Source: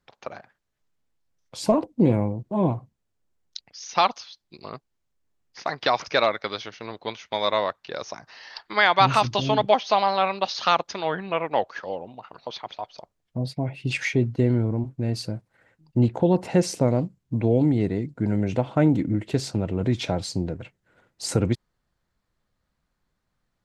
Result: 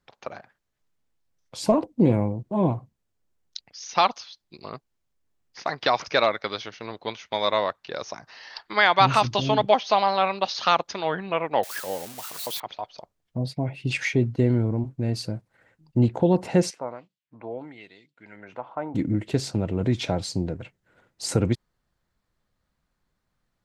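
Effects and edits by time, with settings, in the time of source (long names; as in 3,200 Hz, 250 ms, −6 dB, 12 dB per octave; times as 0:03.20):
0:11.63–0:12.60: spike at every zero crossing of −25 dBFS
0:16.69–0:18.94: auto-filter band-pass sine 2.3 Hz → 0.38 Hz 950–3,600 Hz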